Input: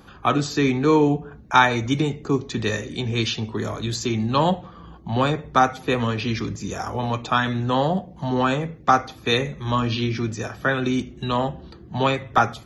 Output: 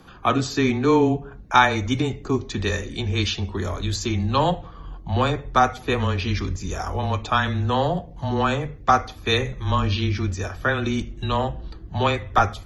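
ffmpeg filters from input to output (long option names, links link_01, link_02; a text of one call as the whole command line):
ffmpeg -i in.wav -af "afreqshift=-16,asubboost=boost=5:cutoff=71" out.wav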